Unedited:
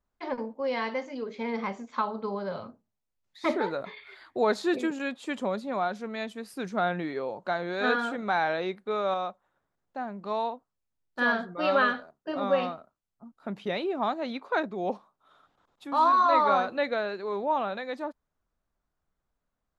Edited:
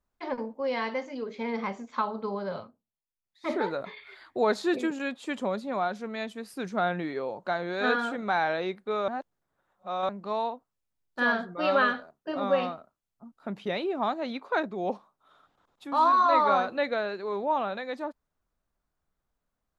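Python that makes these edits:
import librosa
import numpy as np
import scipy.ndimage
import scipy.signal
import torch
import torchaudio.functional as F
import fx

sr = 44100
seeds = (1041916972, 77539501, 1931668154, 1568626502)

y = fx.edit(x, sr, fx.fade_down_up(start_s=2.59, length_s=0.94, db=-12.0, fade_s=0.14, curve='qua'),
    fx.reverse_span(start_s=9.08, length_s=1.01), tone=tone)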